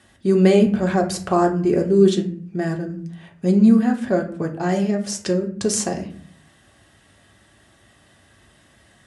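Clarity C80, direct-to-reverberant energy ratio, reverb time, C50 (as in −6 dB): 15.5 dB, 2.0 dB, 0.50 s, 10.5 dB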